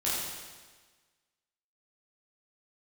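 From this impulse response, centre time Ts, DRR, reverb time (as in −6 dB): 99 ms, −9.5 dB, 1.4 s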